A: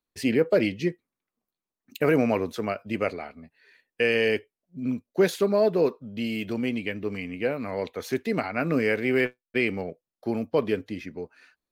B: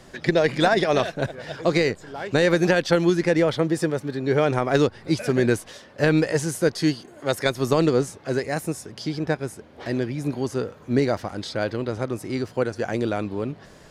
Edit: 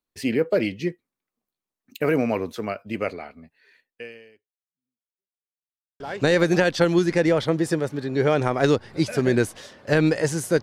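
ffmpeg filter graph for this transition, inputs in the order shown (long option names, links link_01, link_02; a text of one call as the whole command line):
ffmpeg -i cue0.wav -i cue1.wav -filter_complex "[0:a]apad=whole_dur=10.62,atrim=end=10.62,asplit=2[link_01][link_02];[link_01]atrim=end=5.52,asetpts=PTS-STARTPTS,afade=type=out:start_time=3.79:duration=1.73:curve=exp[link_03];[link_02]atrim=start=5.52:end=6,asetpts=PTS-STARTPTS,volume=0[link_04];[1:a]atrim=start=2.11:end=6.73,asetpts=PTS-STARTPTS,afade=type=in:duration=0.004:curve=hsin[link_05];[link_03][link_04][link_05]concat=n=3:v=0:a=1" out.wav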